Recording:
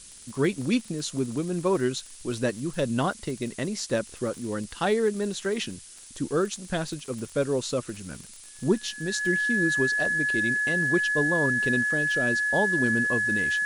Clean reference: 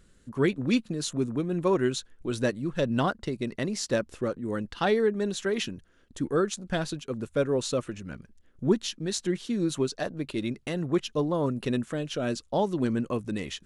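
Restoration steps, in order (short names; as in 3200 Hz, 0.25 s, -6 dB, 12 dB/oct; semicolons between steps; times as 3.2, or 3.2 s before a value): de-click; notch 1700 Hz, Q 30; noise print and reduce 10 dB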